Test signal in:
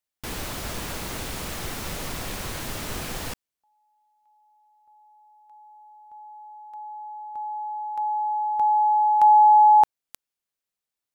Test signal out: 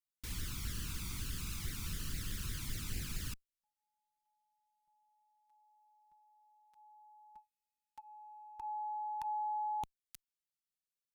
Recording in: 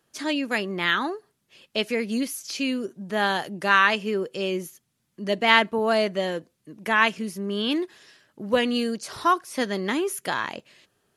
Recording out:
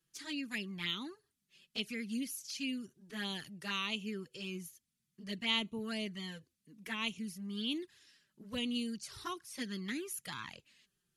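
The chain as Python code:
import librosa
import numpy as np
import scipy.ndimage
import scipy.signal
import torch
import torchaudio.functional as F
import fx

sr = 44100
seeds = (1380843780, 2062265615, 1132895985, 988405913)

y = fx.tone_stack(x, sr, knobs='6-0-2')
y = fx.env_flanger(y, sr, rest_ms=6.1, full_db=-40.5)
y = y * 10.0 ** (8.5 / 20.0)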